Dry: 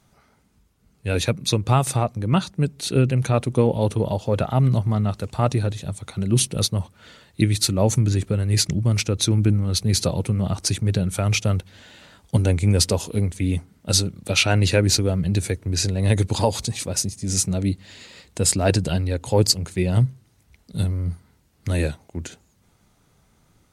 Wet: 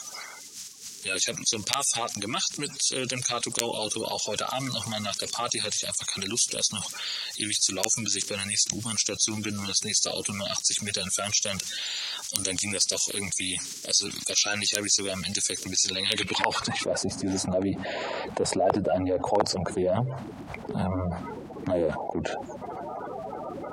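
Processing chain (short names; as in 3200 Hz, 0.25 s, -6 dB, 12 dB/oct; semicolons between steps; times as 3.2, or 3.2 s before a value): bin magnitudes rounded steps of 30 dB; wrapped overs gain 5.5 dB; band-pass sweep 6100 Hz -> 700 Hz, 15.81–16.97; fast leveller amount 70%; gain -1 dB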